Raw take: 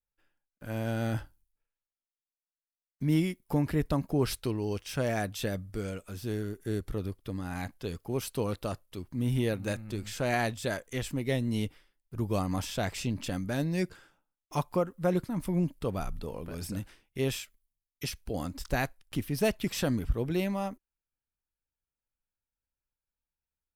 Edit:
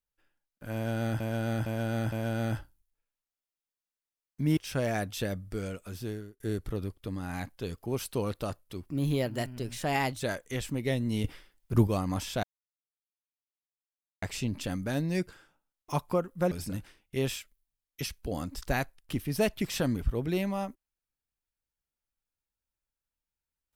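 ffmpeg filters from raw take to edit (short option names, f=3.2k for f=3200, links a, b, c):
-filter_complex "[0:a]asplit=12[a][b][c][d][e][f][g][h][i][j][k][l];[a]atrim=end=1.202[m];[b]atrim=start=0.738:end=1.202[n];[c]atrim=start=0.738:end=1.202[o];[d]atrim=start=0.738:end=3.192[p];[e]atrim=start=4.788:end=6.62,asetpts=PTS-STARTPTS,afade=t=out:st=1.412:d=0.42[q];[f]atrim=start=6.62:end=9.114,asetpts=PTS-STARTPTS,afade=t=in:d=0.004:c=hsin[r];[g]atrim=start=9.11:end=10.62,asetpts=PTS-STARTPTS,asetrate=50715,aresample=44100,atrim=end_sample=57905,asetpts=PTS-STARTPTS[s];[h]atrim=start=10.616:end=11.662[t];[i]atrim=start=11.658:end=12.292,asetpts=PTS-STARTPTS,volume=9.5dB[u];[j]atrim=start=12.288:end=12.85,asetpts=PTS-STARTPTS,afade=t=out:st=0.558:d=0.004:c=hsin,apad=pad_dur=1.79[v];[k]atrim=start=12.85:end=15.142,asetpts=PTS-STARTPTS,afade=t=in:d=0.004:c=hsin[w];[l]atrim=start=16.538[x];[m][n]acrossfade=d=0.004:c1=hsin:c2=hsin[y];[y][o]acrossfade=d=0.004:c1=hsin:c2=hsin[z];[z][p]acrossfade=d=0.004:c1=hsin:c2=hsin[aa];[q][r]concat=n=2:v=0:a=1[ab];[aa][ab]acrossfade=d=0.004:c1=hsin:c2=hsin[ac];[ac][s]acrossfade=d=0.004:c1=hsin:c2=hsin[ad];[ad][t]acrossfade=d=0.004:c1=hsin:c2=hsin[ae];[ae][u]acrossfade=d=0.004:c1=hsin:c2=hsin[af];[v][w]concat=n=2:v=0:a=1[ag];[af][ag]acrossfade=d=0.004:c1=hsin:c2=hsin[ah];[ah][x]acrossfade=d=0.004:c1=hsin:c2=hsin"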